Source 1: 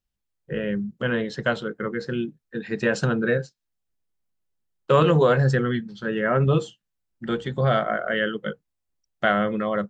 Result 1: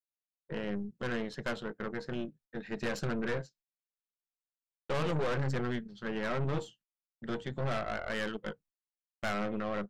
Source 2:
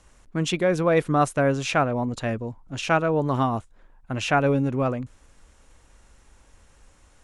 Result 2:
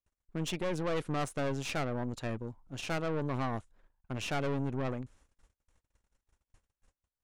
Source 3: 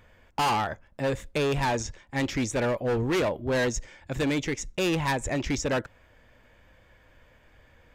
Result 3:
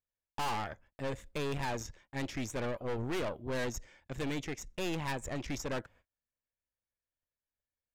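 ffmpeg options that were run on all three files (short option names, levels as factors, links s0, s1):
-af "aeval=exprs='(tanh(15.8*val(0)+0.75)-tanh(0.75))/15.8':c=same,agate=range=0.0224:threshold=0.002:ratio=16:detection=peak,volume=0.531"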